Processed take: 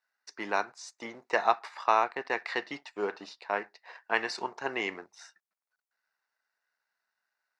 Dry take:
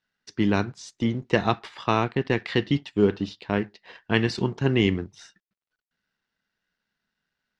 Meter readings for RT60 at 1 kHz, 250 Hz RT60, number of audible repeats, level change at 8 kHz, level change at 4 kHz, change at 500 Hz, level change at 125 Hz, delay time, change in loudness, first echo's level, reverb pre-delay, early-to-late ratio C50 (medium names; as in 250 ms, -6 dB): no reverb, no reverb, no echo, no reading, -8.5 dB, -7.5 dB, -31.5 dB, no echo, -6.0 dB, no echo, no reverb, no reverb